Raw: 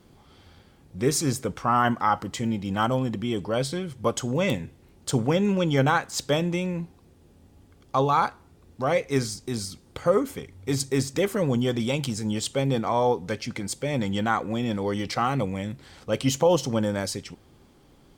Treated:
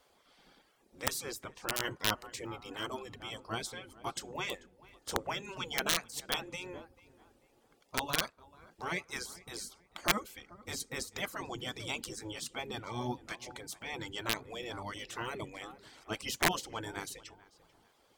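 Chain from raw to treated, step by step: reverb removal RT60 0.62 s; on a send: darkening echo 0.44 s, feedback 35%, low-pass 2200 Hz, level -20 dB; on the sum: wrapped overs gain 12 dB; spectral gate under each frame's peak -10 dB weak; gain -4.5 dB

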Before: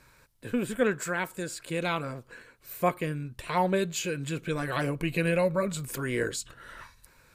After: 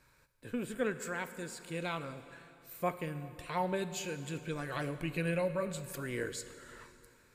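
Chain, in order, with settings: plate-style reverb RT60 2.8 s, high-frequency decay 0.9×, DRR 11 dB; gain -8 dB

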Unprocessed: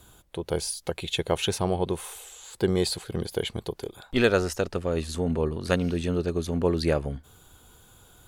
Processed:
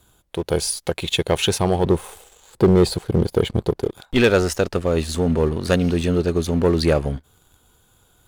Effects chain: 1.84–3.91 tilt shelf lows +6.5 dB, about 1200 Hz; sample leveller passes 2

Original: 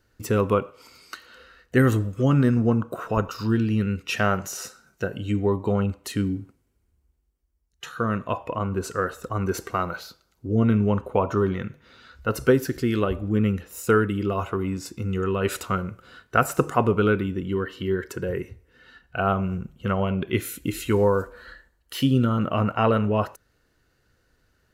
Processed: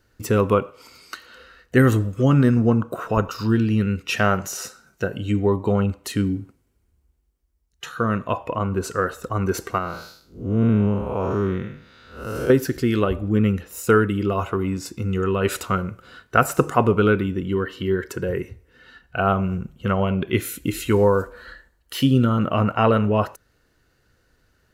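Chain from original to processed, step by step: 9.78–12.5 time blur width 0.196 s; gain +3 dB

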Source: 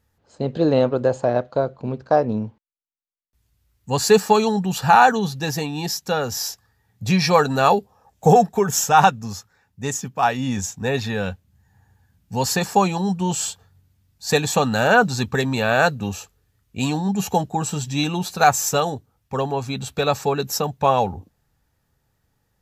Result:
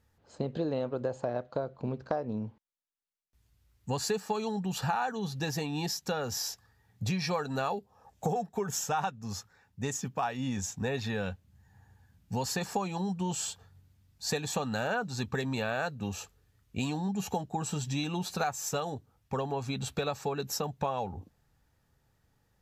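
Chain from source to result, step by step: compressor 5:1, threshold -28 dBFS, peak gain reduction 17.5 dB; high shelf 10000 Hz -5.5 dB; gain -2 dB

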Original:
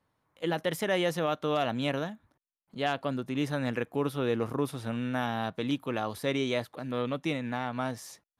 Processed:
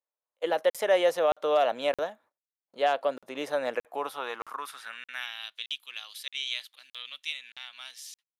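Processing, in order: gate -56 dBFS, range -25 dB; high-pass sweep 550 Hz -> 3100 Hz, 3.74–5.54; crackling interface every 0.62 s, samples 2048, zero, from 0.7

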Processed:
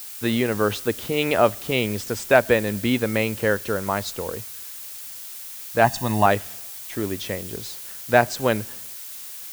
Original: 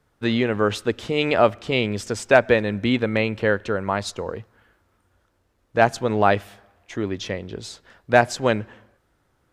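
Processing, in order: added noise blue -36 dBFS; 5.84–6.26 comb 1.1 ms, depth 78%; gain -1 dB

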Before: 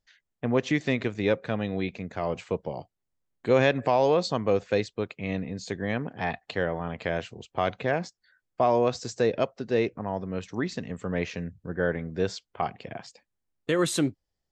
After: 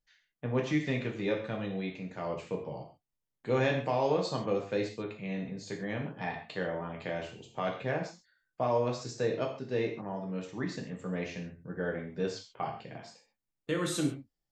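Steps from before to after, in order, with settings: non-linear reverb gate 0.17 s falling, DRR 0 dB; gain -9 dB

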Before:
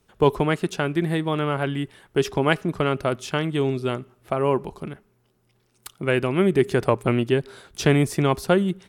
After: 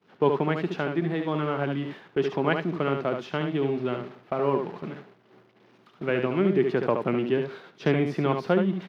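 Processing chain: zero-crossing step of -32 dBFS; HPF 150 Hz 24 dB/oct; air absorption 280 m; echo 72 ms -6 dB; expander -31 dBFS; gain -4 dB

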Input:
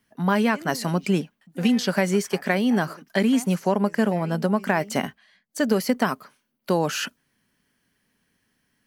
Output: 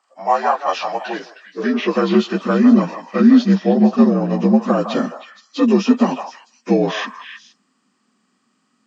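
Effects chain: inharmonic rescaling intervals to 80%; high-pass sweep 740 Hz -> 220 Hz, 0.89–2.27; delay with a stepping band-pass 0.157 s, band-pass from 870 Hz, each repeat 1.4 oct, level -5 dB; gain +4.5 dB

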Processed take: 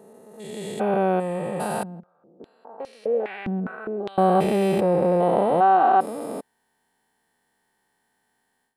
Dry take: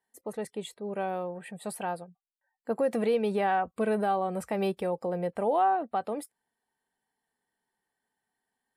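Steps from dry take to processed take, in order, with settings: stepped spectrum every 0.4 s; AGC gain up to 16 dB; 1.83–4.18 stepped band-pass 4.9 Hz 210–5700 Hz; gain -2 dB

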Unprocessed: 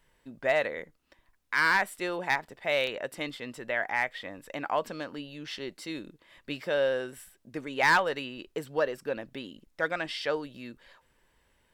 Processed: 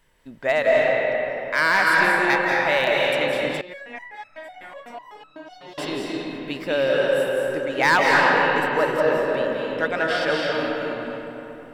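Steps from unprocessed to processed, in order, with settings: reverb RT60 3.6 s, pre-delay 0.139 s, DRR -4 dB; 3.61–5.78 stepped resonator 8 Hz 180–1300 Hz; gain +4.5 dB

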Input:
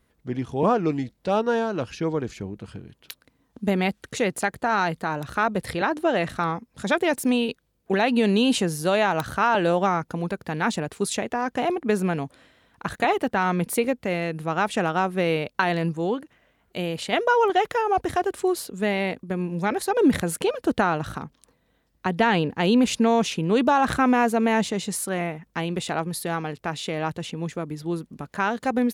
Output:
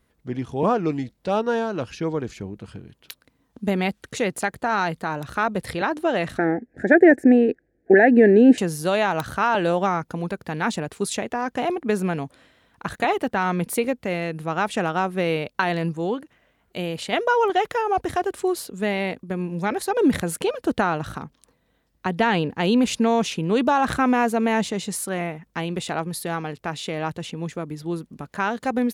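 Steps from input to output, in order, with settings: 6.38–8.58 EQ curve 190 Hz 0 dB, 320 Hz +14 dB, 520 Hz +7 dB, 760 Hz +6 dB, 1100 Hz -25 dB, 1700 Hz +14 dB, 3200 Hz -22 dB, 5300 Hz -17 dB, 7700 Hz -15 dB, 15000 Hz -26 dB

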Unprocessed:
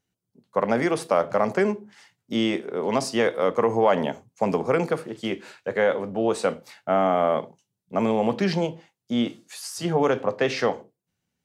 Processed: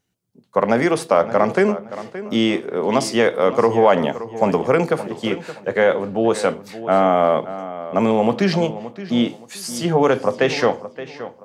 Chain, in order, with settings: 1.05–1.57 high shelf 11000 Hz -9.5 dB; darkening echo 0.572 s, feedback 27%, low-pass 4300 Hz, level -14 dB; gain +5.5 dB

